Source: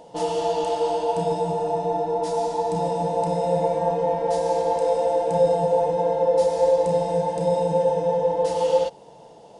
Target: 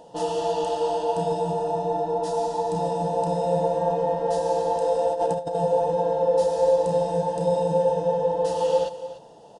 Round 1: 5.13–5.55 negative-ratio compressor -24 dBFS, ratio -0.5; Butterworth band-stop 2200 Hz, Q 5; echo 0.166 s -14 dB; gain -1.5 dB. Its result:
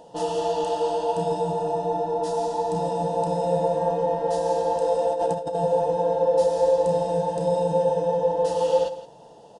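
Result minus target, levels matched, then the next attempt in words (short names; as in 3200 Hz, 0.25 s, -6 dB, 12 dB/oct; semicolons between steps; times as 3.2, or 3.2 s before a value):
echo 0.128 s early
5.13–5.55 negative-ratio compressor -24 dBFS, ratio -0.5; Butterworth band-stop 2200 Hz, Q 5; echo 0.294 s -14 dB; gain -1.5 dB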